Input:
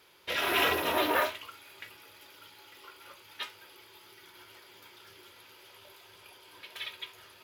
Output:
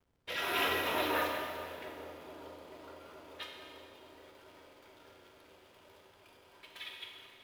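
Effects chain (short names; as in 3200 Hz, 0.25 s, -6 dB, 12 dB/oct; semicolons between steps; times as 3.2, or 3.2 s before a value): on a send: dark delay 0.435 s, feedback 80%, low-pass 690 Hz, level -11 dB; on the sum: backlash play -48.5 dBFS; bell 350 Hz -2.5 dB 0.25 oct; Schroeder reverb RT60 2.2 s, combs from 32 ms, DRR 2 dB; gain -6.5 dB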